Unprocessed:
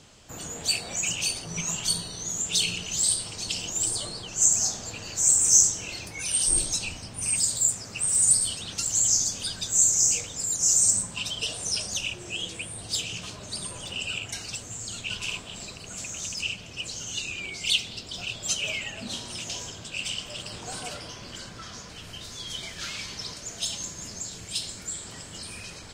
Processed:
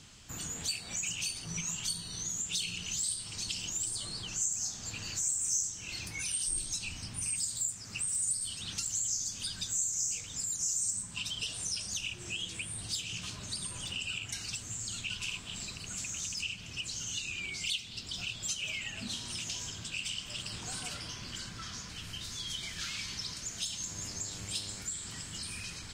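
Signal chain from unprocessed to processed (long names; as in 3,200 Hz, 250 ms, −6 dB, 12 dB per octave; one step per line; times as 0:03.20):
parametric band 560 Hz −11 dB 1.5 octaves
downward compressor 2.5 to 1, threshold −36 dBFS, peak gain reduction 15 dB
0:23.88–0:24.82: hum with harmonics 100 Hz, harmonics 28, −51 dBFS −5 dB per octave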